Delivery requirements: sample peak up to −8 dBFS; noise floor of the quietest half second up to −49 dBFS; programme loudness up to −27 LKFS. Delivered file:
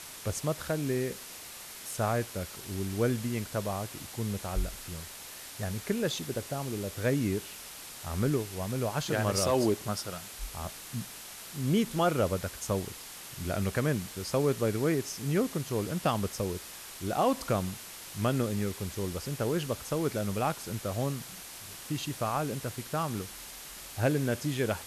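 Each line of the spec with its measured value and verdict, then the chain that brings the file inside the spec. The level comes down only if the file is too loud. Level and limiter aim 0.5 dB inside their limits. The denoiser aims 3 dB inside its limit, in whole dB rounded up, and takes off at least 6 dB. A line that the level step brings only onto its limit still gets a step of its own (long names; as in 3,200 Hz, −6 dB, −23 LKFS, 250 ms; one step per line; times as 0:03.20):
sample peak −15.5 dBFS: in spec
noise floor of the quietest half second −45 dBFS: out of spec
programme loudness −32.5 LKFS: in spec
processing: broadband denoise 7 dB, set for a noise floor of −45 dBFS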